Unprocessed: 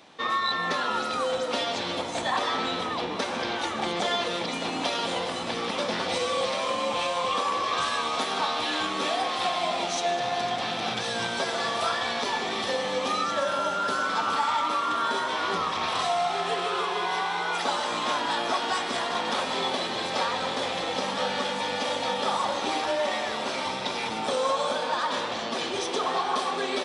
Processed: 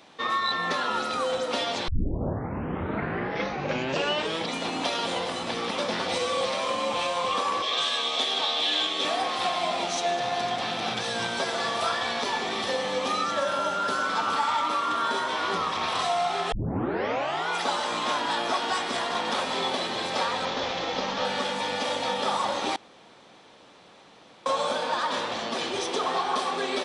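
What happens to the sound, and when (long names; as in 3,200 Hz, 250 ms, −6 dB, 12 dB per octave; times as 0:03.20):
0:01.88: tape start 2.64 s
0:07.62–0:09.05: loudspeaker in its box 200–9,200 Hz, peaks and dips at 200 Hz −8 dB, 320 Hz −4 dB, 970 Hz −7 dB, 1,400 Hz −8 dB, 3,400 Hz +10 dB
0:16.52: tape start 0.96 s
0:20.45–0:21.25: variable-slope delta modulation 32 kbit/s
0:22.76–0:24.46: fill with room tone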